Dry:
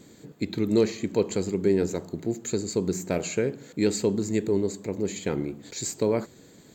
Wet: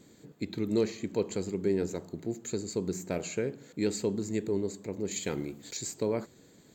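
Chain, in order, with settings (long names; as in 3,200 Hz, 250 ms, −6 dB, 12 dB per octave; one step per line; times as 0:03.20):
0:05.11–0:05.77: high-shelf EQ 2,800 Hz +10.5 dB
level −6 dB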